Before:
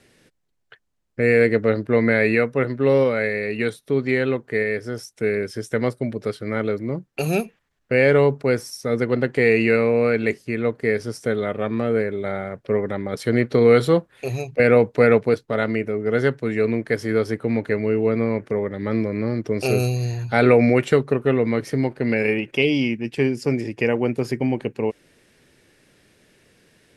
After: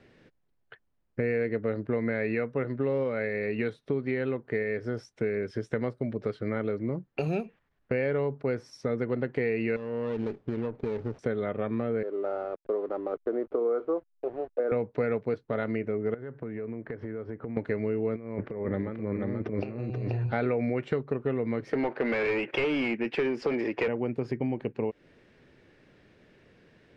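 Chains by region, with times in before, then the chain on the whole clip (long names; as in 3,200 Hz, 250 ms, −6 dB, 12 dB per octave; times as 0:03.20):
0:09.76–0:11.19: running median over 25 samples + downward compressor 12 to 1, threshold −24 dBFS + windowed peak hold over 9 samples
0:12.03–0:14.72: Chebyshev band-pass filter 310–1,300 Hz, order 3 + slack as between gear wheels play −39.5 dBFS
0:16.14–0:17.57: low-pass filter 1,800 Hz + downward compressor 10 to 1, threshold −32 dBFS
0:18.16–0:20.32: low-pass filter 3,100 Hz + compressor whose output falls as the input rises −28 dBFS, ratio −0.5 + single-tap delay 483 ms −5 dB
0:21.73–0:23.88: high-pass filter 360 Hz 6 dB per octave + mid-hump overdrive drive 24 dB, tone 1,900 Hz, clips at −7 dBFS
whole clip: low-pass filter 4,800 Hz 12 dB per octave; high-shelf EQ 3,000 Hz −11 dB; downward compressor 4 to 1, threshold −27 dBFS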